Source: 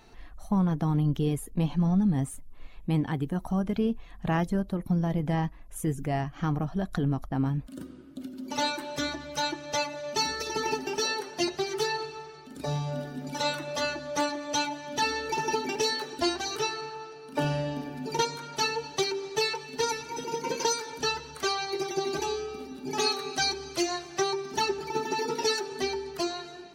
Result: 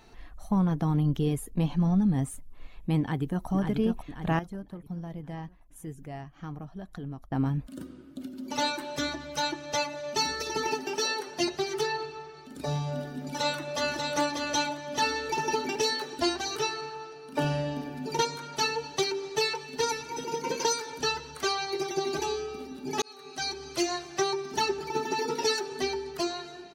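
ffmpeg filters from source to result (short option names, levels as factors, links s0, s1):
-filter_complex "[0:a]asplit=2[s0][s1];[s1]afade=t=in:st=3:d=0.01,afade=t=out:st=3.48:d=0.01,aecho=0:1:540|1080|1620|2160|2700|3240|3780:0.562341|0.309288|0.170108|0.0935595|0.0514577|0.0283018|0.015566[s2];[s0][s2]amix=inputs=2:normalize=0,asettb=1/sr,asplit=3[s3][s4][s5];[s3]atrim=end=10.674[s6];[s4]atrim=start=10.67:end=11.27,asetpts=PTS-STARTPTS,afade=t=in:d=0.004:c=qsin,afade=t=out:st=0.596:d=0.004:c=qsin,highpass=f=190:p=1[s7];[s5]atrim=start=11.266[s8];[s6][s7]acrossfade=d=0.004:c1=hsin:c2=qsin[s9];[s9][s8]acrossfade=d=0.004:c1=qsin:c2=hsin,asettb=1/sr,asplit=3[s10][s11][s12];[s10]atrim=end=11.814[s13];[s11]atrim=start=11.81:end=12.37,asetpts=PTS-STARTPTS,afade=t=in:d=0.004:c=qsin,afade=t=out:st=0.556:d=0.004:c=qsin,highshelf=f=6800:g=-11[s14];[s12]atrim=start=12.366[s15];[s13][s14]acrossfade=d=0.004:c1=hsin:c2=qsin[s16];[s16][s15]acrossfade=d=0.004:c1=qsin:c2=hsin,asplit=2[s17][s18];[s18]afade=t=in:st=13.24:d=0.01,afade=t=out:st=14.12:d=0.01,aecho=0:1:590|1180|1770|2360|2950:0.668344|0.23392|0.0818721|0.0286552|0.0100293[s19];[s17][s19]amix=inputs=2:normalize=0,asplit=4[s20][s21][s22][s23];[s20]atrim=end=4.392[s24];[s21]atrim=start=4.388:end=7.322,asetpts=PTS-STARTPTS,volume=0.282[s25];[s22]atrim=start=7.318:end=23.02,asetpts=PTS-STARTPTS,afade=t=out:st=15.698:d=0.004:c=hsin[s26];[s23]atrim=start=23.02,asetpts=PTS-STARTPTS,afade=t=in:d=0.8[s27];[s24][s25]acrossfade=d=0.004:c1=hsin:c2=hsin[s28];[s26][s27]concat=n=2:v=0:a=1[s29];[s28][s29]acrossfade=d=0.004:c1=hsin:c2=hsin"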